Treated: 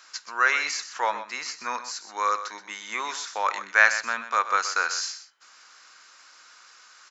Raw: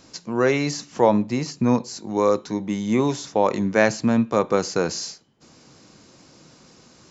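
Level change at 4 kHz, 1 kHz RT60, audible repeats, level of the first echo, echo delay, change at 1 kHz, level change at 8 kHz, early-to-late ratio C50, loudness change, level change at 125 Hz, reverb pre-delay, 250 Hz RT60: +1.0 dB, none, 1, -12.0 dB, 0.126 s, +0.5 dB, n/a, none, -3.5 dB, under -35 dB, none, none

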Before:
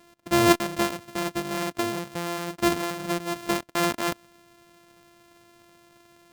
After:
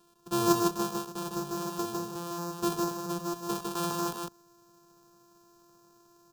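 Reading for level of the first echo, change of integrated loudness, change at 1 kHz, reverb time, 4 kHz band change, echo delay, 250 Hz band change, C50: -12.5 dB, -5.5 dB, -4.5 dB, none, -7.5 dB, 68 ms, -4.5 dB, none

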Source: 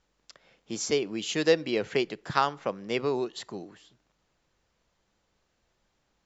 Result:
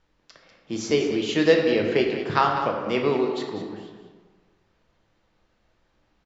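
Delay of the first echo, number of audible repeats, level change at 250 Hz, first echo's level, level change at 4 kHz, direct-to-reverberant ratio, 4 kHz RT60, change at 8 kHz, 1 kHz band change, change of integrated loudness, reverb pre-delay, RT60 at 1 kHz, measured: 0.196 s, 1, +7.5 dB, -10.5 dB, +3.0 dB, 1.0 dB, 0.85 s, n/a, +6.0 dB, +5.5 dB, 3 ms, 1.5 s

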